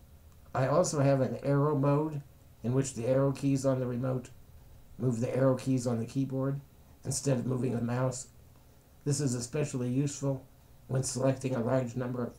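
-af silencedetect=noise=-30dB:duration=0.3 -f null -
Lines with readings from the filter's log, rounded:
silence_start: 0.00
silence_end: 0.55 | silence_duration: 0.55
silence_start: 2.18
silence_end: 2.65 | silence_duration: 0.48
silence_start: 4.18
silence_end: 5.02 | silence_duration: 0.84
silence_start: 6.54
silence_end: 7.07 | silence_duration: 0.53
silence_start: 8.21
silence_end: 9.07 | silence_duration: 0.86
silence_start: 10.35
silence_end: 10.91 | silence_duration: 0.56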